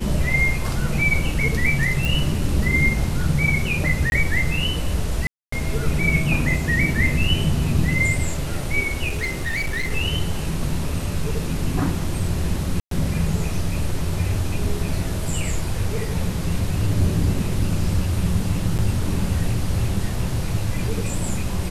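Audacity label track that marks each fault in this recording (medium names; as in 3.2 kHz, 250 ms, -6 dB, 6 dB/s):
2.050000	2.050000	pop
4.100000	4.120000	dropout 21 ms
5.270000	5.520000	dropout 254 ms
9.080000	9.900000	clipped -20 dBFS
12.800000	12.910000	dropout 113 ms
18.780000	18.790000	dropout 8.1 ms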